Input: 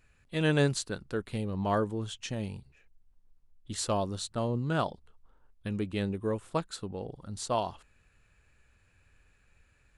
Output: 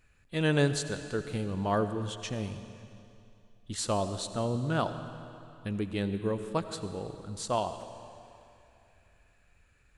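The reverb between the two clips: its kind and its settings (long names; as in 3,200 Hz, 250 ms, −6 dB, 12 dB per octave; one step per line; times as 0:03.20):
comb and all-pass reverb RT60 2.7 s, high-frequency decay 0.95×, pre-delay 45 ms, DRR 10 dB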